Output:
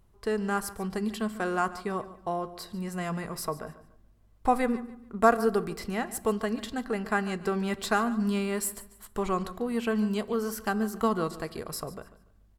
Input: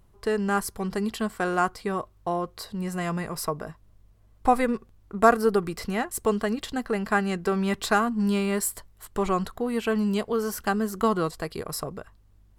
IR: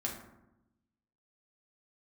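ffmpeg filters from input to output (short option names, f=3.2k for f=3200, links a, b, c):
-filter_complex "[0:a]aecho=1:1:144|288|432:0.141|0.041|0.0119,asplit=2[a][b];[1:a]atrim=start_sample=2205[c];[b][c]afir=irnorm=-1:irlink=0,volume=-14.5dB[d];[a][d]amix=inputs=2:normalize=0,volume=-5dB"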